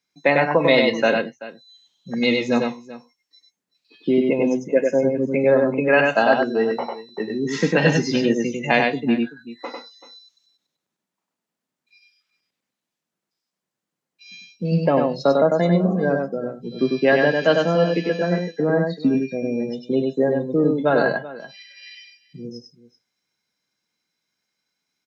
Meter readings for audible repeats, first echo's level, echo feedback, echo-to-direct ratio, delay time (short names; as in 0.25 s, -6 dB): 2, -3.5 dB, no steady repeat, -3.5 dB, 98 ms